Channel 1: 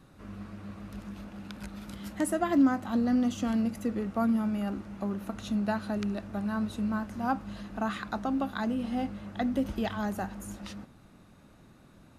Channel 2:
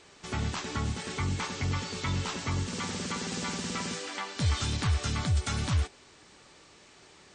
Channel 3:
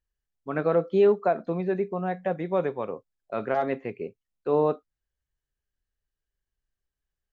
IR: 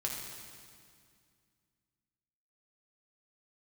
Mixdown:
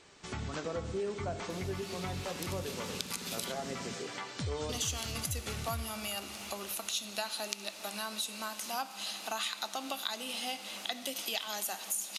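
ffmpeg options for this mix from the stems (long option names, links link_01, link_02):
-filter_complex "[0:a]highpass=610,aexciter=amount=7.4:drive=3.2:freq=2400,adelay=1500,volume=2.5dB,asplit=3[link_01][link_02][link_03];[link_01]atrim=end=3.52,asetpts=PTS-STARTPTS,afade=type=out:start_time=3.516:duration=0.004:curve=hsin[link_04];[link_02]atrim=start=3.52:end=4.69,asetpts=PTS-STARTPTS,volume=0[link_05];[link_03]atrim=start=4.69,asetpts=PTS-STARTPTS,afade=type=in:duration=0.004:curve=hsin[link_06];[link_04][link_05][link_06]concat=n=3:v=0:a=1,asplit=2[link_07][link_08];[link_08]volume=-12dB[link_09];[1:a]volume=-4dB,asplit=2[link_10][link_11];[link_11]volume=-20dB[link_12];[2:a]volume=-11dB,asplit=2[link_13][link_14];[link_14]volume=-5dB[link_15];[3:a]atrim=start_sample=2205[link_16];[link_09][link_12][link_15]amix=inputs=3:normalize=0[link_17];[link_17][link_16]afir=irnorm=-1:irlink=0[link_18];[link_07][link_10][link_13][link_18]amix=inputs=4:normalize=0,acompressor=threshold=-37dB:ratio=2.5"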